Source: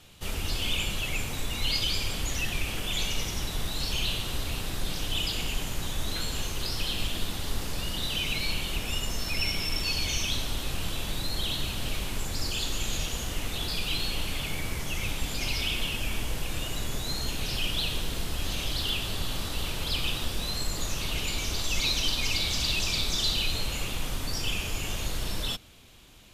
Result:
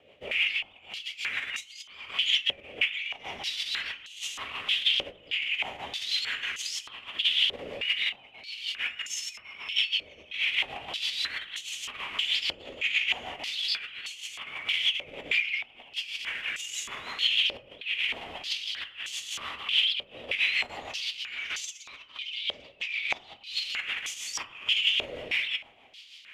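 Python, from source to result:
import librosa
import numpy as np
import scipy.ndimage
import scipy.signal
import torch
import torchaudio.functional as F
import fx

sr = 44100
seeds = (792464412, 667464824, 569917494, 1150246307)

y = fx.band_shelf(x, sr, hz=2500.0, db=13.0, octaves=1.0)
y = fx.over_compress(y, sr, threshold_db=-27.0, ratio=-0.5)
y = fx.rotary(y, sr, hz=6.3)
y = fx.rev_fdn(y, sr, rt60_s=0.88, lf_ratio=1.3, hf_ratio=0.5, size_ms=73.0, drr_db=9.0)
y = fx.filter_held_bandpass(y, sr, hz=3.2, low_hz=550.0, high_hz=6600.0)
y = y * librosa.db_to_amplitude(8.5)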